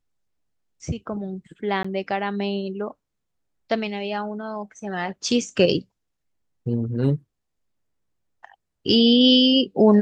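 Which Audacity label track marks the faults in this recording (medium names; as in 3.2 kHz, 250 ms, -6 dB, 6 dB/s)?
1.830000	1.840000	dropout 15 ms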